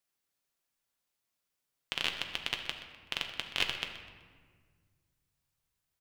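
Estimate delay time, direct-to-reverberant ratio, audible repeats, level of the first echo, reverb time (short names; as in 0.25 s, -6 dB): 0.126 s, 3.5 dB, 2, -14.0 dB, 1.7 s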